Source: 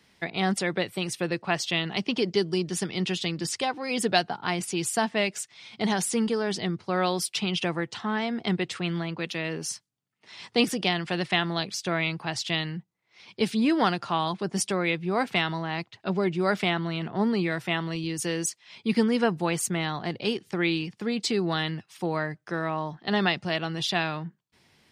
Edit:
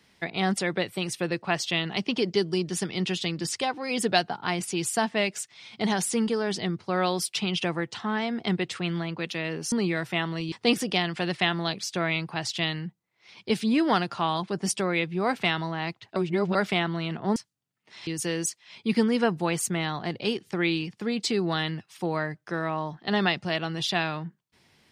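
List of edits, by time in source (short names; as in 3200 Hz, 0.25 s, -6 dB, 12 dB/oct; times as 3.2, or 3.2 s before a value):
9.72–10.43 swap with 17.27–18.07
16.07–16.46 reverse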